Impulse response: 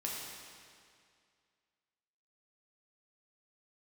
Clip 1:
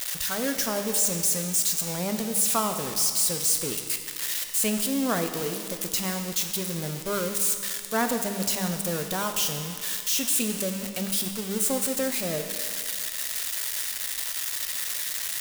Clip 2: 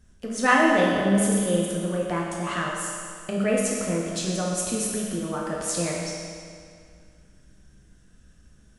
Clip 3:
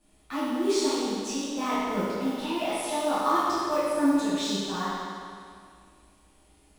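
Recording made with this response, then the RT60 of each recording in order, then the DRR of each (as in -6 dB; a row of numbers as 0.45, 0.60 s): 2; 2.2, 2.2, 2.2 s; 5.5, -4.0, -13.5 dB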